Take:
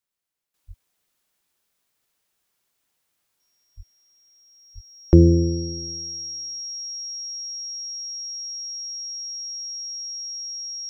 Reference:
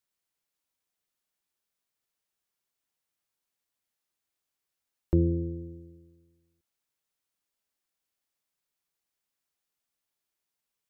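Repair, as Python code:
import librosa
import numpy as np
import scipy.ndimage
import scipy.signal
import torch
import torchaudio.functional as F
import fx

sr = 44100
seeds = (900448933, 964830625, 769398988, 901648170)

y = fx.notch(x, sr, hz=5600.0, q=30.0)
y = fx.fix_deplosive(y, sr, at_s=(0.67, 3.76, 4.74))
y = fx.fix_level(y, sr, at_s=0.54, step_db=-11.5)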